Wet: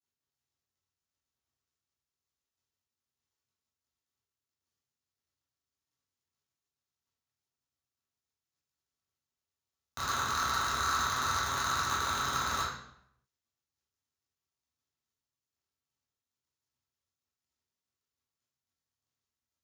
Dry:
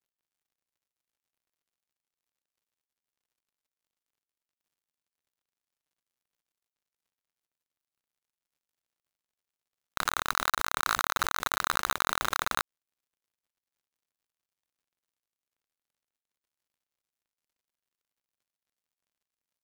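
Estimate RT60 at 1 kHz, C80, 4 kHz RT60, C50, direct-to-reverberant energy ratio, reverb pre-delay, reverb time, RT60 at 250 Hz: 0.70 s, 5.5 dB, 0.60 s, 1.5 dB, -9.5 dB, 3 ms, 0.75 s, 0.85 s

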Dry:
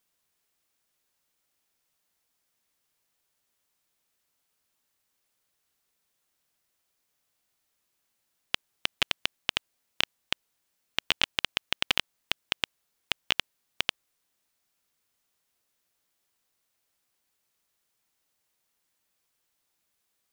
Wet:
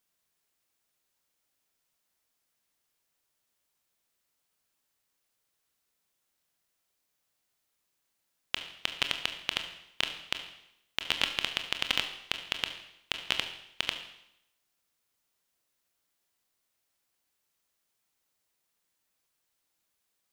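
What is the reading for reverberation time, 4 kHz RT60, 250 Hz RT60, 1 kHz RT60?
0.80 s, 0.75 s, 0.85 s, 0.80 s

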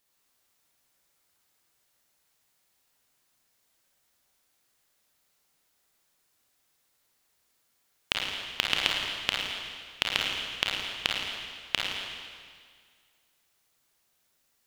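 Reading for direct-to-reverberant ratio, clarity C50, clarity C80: -2.5 dB, -1.5 dB, 1.5 dB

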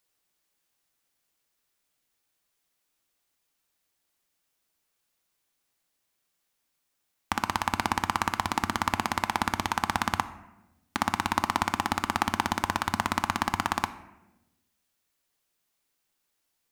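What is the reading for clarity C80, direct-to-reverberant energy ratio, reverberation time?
16.0 dB, 11.0 dB, 1.0 s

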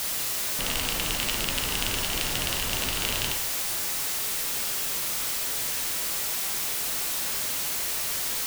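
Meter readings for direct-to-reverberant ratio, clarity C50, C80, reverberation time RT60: 4.0 dB, 8.5 dB, 11.5 dB, 0.70 s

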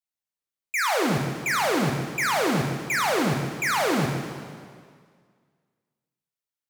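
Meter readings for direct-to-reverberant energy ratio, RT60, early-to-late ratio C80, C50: 1.5 dB, 1.9 s, 5.0 dB, 3.5 dB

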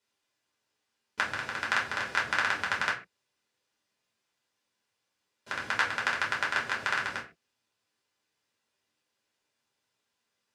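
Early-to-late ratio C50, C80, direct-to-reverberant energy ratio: 9.5 dB, 15.0 dB, -3.5 dB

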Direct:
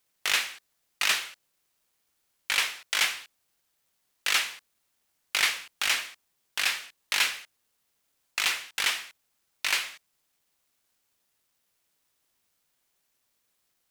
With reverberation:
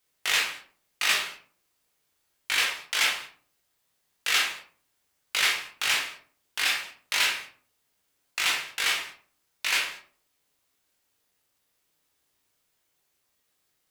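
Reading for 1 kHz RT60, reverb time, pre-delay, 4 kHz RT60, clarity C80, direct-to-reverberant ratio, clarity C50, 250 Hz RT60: 0.40 s, 0.45 s, 14 ms, 0.25 s, 11.5 dB, -1.5 dB, 6.5 dB, 0.65 s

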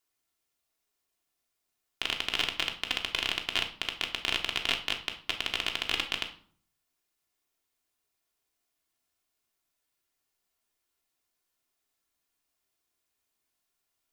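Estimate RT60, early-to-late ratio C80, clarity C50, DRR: 0.50 s, 15.5 dB, 11.0 dB, 1.5 dB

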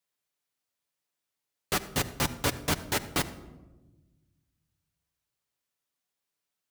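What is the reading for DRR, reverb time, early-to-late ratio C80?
8.5 dB, 1.2 s, 16.0 dB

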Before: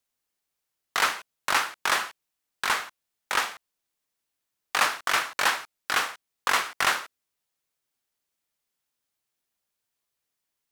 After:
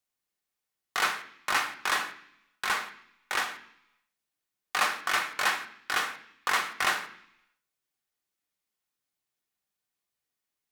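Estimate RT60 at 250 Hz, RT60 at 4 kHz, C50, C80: 0.85 s, 0.90 s, 12.5 dB, 15.0 dB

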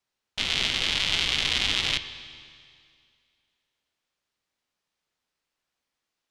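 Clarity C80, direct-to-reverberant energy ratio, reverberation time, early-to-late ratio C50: 12.5 dB, 10.5 dB, 2.2 s, 11.5 dB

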